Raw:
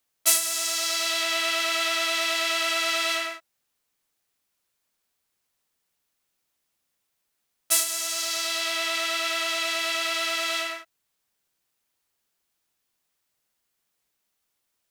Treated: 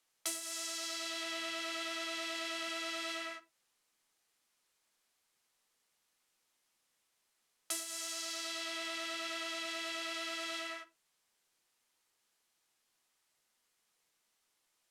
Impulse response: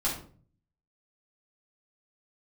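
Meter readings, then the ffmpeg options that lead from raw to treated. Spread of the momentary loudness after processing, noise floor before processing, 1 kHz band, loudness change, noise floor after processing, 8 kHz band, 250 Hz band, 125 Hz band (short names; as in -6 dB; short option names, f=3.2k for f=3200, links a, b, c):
3 LU, -78 dBFS, -13.5 dB, -14.5 dB, -80 dBFS, -15.5 dB, -5.5 dB, n/a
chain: -filter_complex "[0:a]lowpass=11k,lowshelf=f=180:g=-10,acrossover=split=360[a][b];[b]acompressor=threshold=-40dB:ratio=5[c];[a][c]amix=inputs=2:normalize=0,asplit=2[d][e];[1:a]atrim=start_sample=2205,afade=t=out:st=0.23:d=0.01,atrim=end_sample=10584,asetrate=66150,aresample=44100[f];[e][f]afir=irnorm=-1:irlink=0,volume=-14dB[g];[d][g]amix=inputs=2:normalize=0"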